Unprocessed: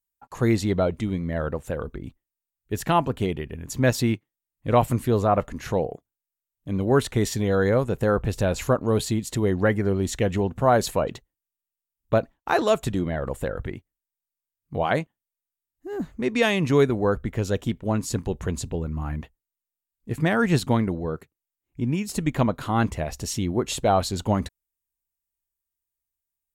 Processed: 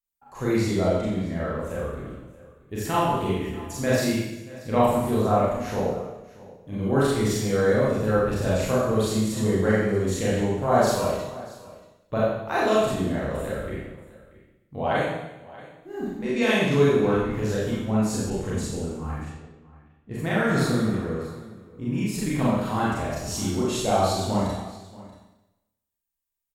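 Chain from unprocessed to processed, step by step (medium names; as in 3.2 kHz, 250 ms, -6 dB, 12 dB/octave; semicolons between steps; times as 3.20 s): Schroeder reverb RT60 0.96 s, combs from 29 ms, DRR -8 dB; 20.51–21.25 s: spectral replace 560–3300 Hz both; on a send: delay 632 ms -19.5 dB; 18.30–20.17 s: on the sum: level-controlled noise filter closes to 2.8 kHz, open at -20 dBFS; trim -8.5 dB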